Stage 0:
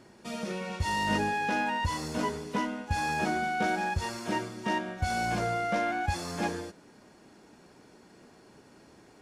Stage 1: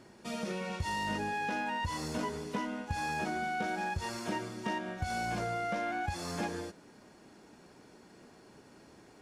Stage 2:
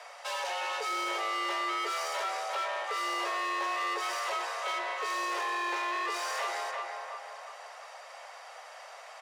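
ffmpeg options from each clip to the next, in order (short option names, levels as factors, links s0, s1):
-af "acompressor=threshold=0.0316:ratio=6,volume=0.891"
-filter_complex "[0:a]asplit=2[s0][s1];[s1]adelay=349,lowpass=f=2000:p=1,volume=0.422,asplit=2[s2][s3];[s3]adelay=349,lowpass=f=2000:p=1,volume=0.46,asplit=2[s4][s5];[s5]adelay=349,lowpass=f=2000:p=1,volume=0.46,asplit=2[s6][s7];[s7]adelay=349,lowpass=f=2000:p=1,volume=0.46,asplit=2[s8][s9];[s9]adelay=349,lowpass=f=2000:p=1,volume=0.46[s10];[s0][s2][s4][s6][s8][s10]amix=inputs=6:normalize=0,asplit=2[s11][s12];[s12]highpass=f=720:p=1,volume=15.8,asoftclip=type=tanh:threshold=0.0841[s13];[s11][s13]amix=inputs=2:normalize=0,lowpass=f=4500:p=1,volume=0.501,afreqshift=350,volume=0.596"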